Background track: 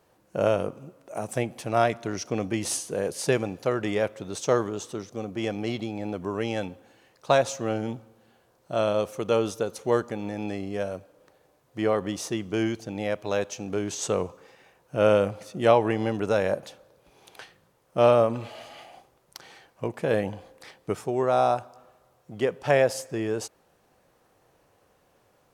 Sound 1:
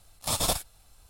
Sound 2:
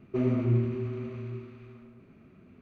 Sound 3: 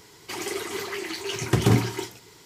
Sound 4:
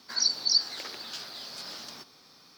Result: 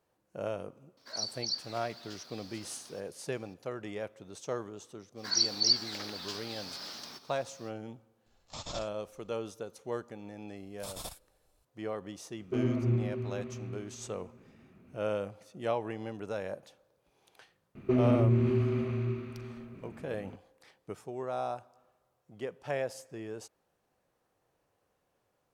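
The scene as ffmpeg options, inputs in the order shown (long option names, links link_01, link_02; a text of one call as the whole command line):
ffmpeg -i bed.wav -i cue0.wav -i cue1.wav -i cue2.wav -i cue3.wav -filter_complex "[4:a]asplit=2[link_01][link_02];[1:a]asplit=2[link_03][link_04];[2:a]asplit=2[link_05][link_06];[0:a]volume=-13dB[link_07];[link_03]aresample=16000,aresample=44100[link_08];[link_06]alimiter=level_in=23dB:limit=-1dB:release=50:level=0:latency=1[link_09];[link_01]atrim=end=2.57,asetpts=PTS-STARTPTS,volume=-11dB,afade=type=in:duration=0.004:curve=hsin,afade=type=out:start_time=2.566:duration=0.004:curve=hsin,adelay=970[link_10];[link_02]atrim=end=2.57,asetpts=PTS-STARTPTS,volume=-2dB,afade=type=in:duration=0.05,afade=type=out:start_time=2.52:duration=0.05,adelay=5150[link_11];[link_08]atrim=end=1.09,asetpts=PTS-STARTPTS,volume=-13dB,afade=type=in:duration=0.004:curve=hsin,afade=type=out:start_time=1.086:duration=0.004:curve=hsin,adelay=364266S[link_12];[link_04]atrim=end=1.09,asetpts=PTS-STARTPTS,volume=-16dB,afade=type=in:duration=0.004:curve=hsin,afade=type=out:start_time=1.086:duration=0.004:curve=hsin,adelay=10560[link_13];[link_05]atrim=end=2.61,asetpts=PTS-STARTPTS,volume=-3.5dB,afade=type=in:duration=0.004:curve=hsin,afade=type=out:start_time=2.606:duration=0.004:curve=hsin,adelay=12380[link_14];[link_09]atrim=end=2.61,asetpts=PTS-STARTPTS,volume=-17.5dB,afade=type=in:duration=0.004:curve=hsin,afade=type=out:start_time=2.606:duration=0.004:curve=hsin,adelay=17750[link_15];[link_07][link_10][link_11][link_12][link_13][link_14][link_15]amix=inputs=7:normalize=0" out.wav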